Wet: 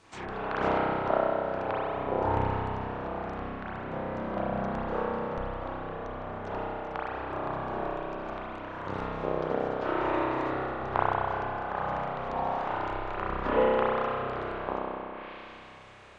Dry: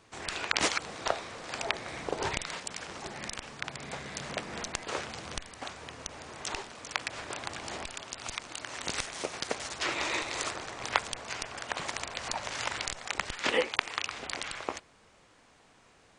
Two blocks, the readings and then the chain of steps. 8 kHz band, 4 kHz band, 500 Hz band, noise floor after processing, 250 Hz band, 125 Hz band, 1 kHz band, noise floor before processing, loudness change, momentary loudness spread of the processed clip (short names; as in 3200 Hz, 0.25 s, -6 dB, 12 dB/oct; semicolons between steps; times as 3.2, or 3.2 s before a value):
under -25 dB, -13.0 dB, +9.0 dB, -46 dBFS, +9.5 dB, +10.0 dB, +7.5 dB, -61 dBFS, +3.5 dB, 10 LU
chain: spring tank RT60 2.5 s, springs 31 ms, chirp 50 ms, DRR -9 dB; dynamic EQ 2100 Hz, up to -7 dB, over -41 dBFS, Q 2; treble ducked by the level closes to 1200 Hz, closed at -33 dBFS